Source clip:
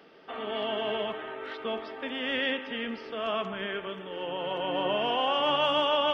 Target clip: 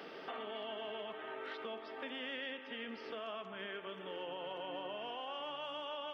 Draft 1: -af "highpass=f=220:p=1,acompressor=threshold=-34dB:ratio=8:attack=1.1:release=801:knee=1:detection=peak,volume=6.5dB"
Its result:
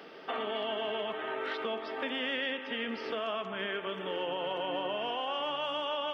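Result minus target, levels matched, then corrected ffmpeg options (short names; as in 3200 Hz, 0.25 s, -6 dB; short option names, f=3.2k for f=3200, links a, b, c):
compressor: peak gain reduction -9 dB
-af "highpass=f=220:p=1,acompressor=threshold=-44.5dB:ratio=8:attack=1.1:release=801:knee=1:detection=peak,volume=6.5dB"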